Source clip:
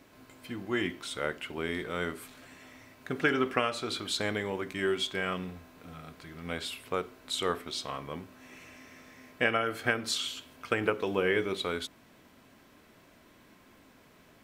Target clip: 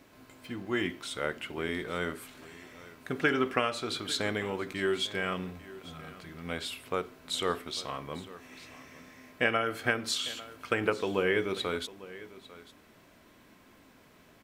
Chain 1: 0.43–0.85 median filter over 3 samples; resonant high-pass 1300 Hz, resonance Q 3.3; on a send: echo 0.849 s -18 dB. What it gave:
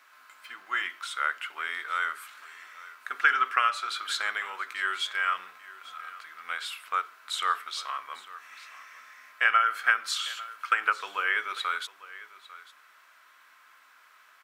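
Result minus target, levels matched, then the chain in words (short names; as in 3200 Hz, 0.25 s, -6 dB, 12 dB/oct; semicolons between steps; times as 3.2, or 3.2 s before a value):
1000 Hz band +4.5 dB
0.43–0.85 median filter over 3 samples; on a send: echo 0.849 s -18 dB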